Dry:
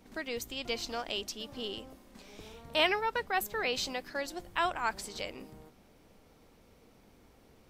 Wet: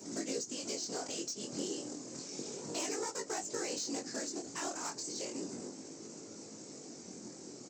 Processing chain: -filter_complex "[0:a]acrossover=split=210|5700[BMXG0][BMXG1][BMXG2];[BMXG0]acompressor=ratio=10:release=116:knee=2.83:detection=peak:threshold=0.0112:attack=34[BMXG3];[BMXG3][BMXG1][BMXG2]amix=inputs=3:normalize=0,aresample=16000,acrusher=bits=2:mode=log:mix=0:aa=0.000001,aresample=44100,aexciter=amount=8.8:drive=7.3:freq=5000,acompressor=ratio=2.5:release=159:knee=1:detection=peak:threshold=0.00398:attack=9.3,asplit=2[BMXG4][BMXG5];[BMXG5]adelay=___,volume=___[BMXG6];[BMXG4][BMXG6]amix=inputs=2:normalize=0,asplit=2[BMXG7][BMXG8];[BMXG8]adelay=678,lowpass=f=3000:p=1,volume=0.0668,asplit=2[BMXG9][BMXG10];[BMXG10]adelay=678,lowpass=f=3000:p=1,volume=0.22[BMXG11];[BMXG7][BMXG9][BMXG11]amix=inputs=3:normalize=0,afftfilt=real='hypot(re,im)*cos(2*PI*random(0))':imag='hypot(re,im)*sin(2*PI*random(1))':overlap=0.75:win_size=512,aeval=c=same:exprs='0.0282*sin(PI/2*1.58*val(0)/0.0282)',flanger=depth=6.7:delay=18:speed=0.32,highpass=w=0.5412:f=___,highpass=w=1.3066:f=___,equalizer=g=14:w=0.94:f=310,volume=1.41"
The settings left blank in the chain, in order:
28, 0.224, 120, 120